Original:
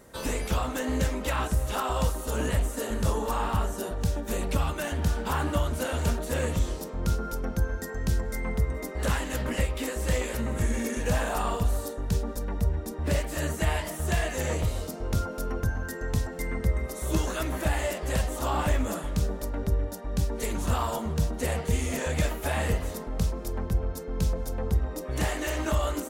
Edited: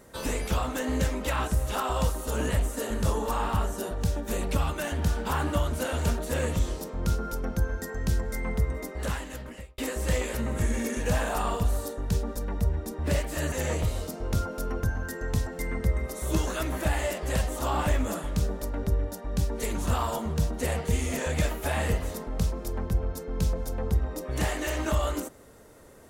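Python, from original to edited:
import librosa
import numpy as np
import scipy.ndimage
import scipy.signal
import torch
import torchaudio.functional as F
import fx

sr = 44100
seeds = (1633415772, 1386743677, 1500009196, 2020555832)

y = fx.edit(x, sr, fx.fade_out_span(start_s=8.7, length_s=1.08),
    fx.cut(start_s=13.52, length_s=0.8), tone=tone)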